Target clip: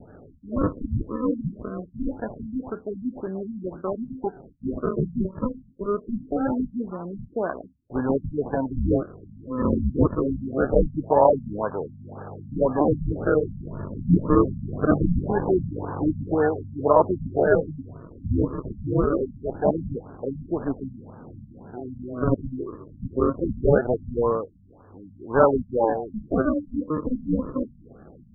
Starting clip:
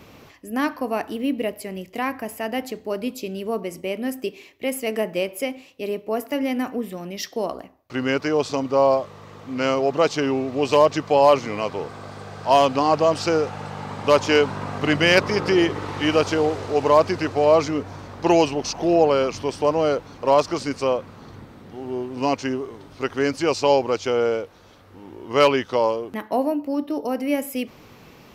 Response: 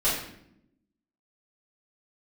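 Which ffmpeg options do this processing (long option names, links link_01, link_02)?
-filter_complex "[0:a]asettb=1/sr,asplit=3[link_01][link_02][link_03];[link_01]atrim=end=17.444[link_04];[link_02]atrim=start=17.44:end=19.49,asetpts=PTS-STARTPTS,afade=type=in:duration=0.004:curve=qsin,afade=type=out:start_time=2.046:duration=0.004:curve=qsin,flanger=delay=1.9:depth=6.8:regen=33:speed=1.1:shape=triangular[link_05];[link_03]atrim=start=19.486[link_06];[link_04][link_05]acrossfade=duration=0.004:curve1=hsin:curve2=qsin[link_07];[link_07][link_06]acrossfade=duration=0.004:curve1=qsin:curve2=hsin,acrusher=samples=39:mix=1:aa=0.000001:lfo=1:lforange=39:lforate=0.23,afftfilt=real='re*lt(b*sr/1024,240*pow(1800/240,0.5+0.5*sin(2*PI*1.9*pts/sr)))':imag='im*lt(b*sr/1024,240*pow(1800/240,0.5+0.5*sin(2*PI*1.9*pts/sr)))':win_size=1024:overlap=0.75"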